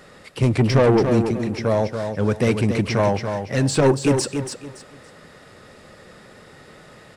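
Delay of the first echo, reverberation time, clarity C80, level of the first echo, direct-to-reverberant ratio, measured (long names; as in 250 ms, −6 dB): 283 ms, no reverb audible, no reverb audible, −7.0 dB, no reverb audible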